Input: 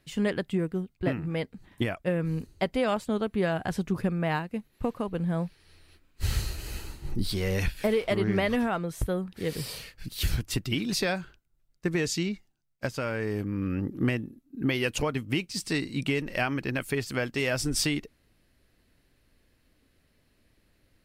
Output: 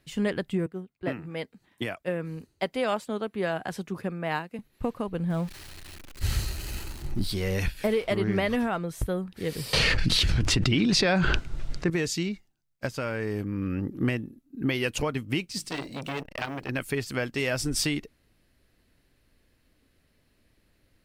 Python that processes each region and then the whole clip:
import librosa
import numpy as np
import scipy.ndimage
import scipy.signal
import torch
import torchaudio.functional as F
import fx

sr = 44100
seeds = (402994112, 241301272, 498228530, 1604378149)

y = fx.chain(x, sr, fx.highpass(hz=280.0, slope=6),
    fx.band_widen(depth_pct=40), at=(0.66, 4.59))
y = fx.chain(y, sr, fx.zero_step(step_db=-39.5),
    fx.notch(hz=460.0, q=7.7), at=(5.3, 7.27))
y = fx.chain(y, sr, fx.air_absorb(metres=98.0),
    fx.env_flatten(amount_pct=100), at=(9.73, 11.9))
y = fx.chain(y, sr, fx.block_float(bits=7),
    fx.hum_notches(base_hz=50, count=9),
    fx.transformer_sat(knee_hz=1800.0), at=(15.58, 16.69))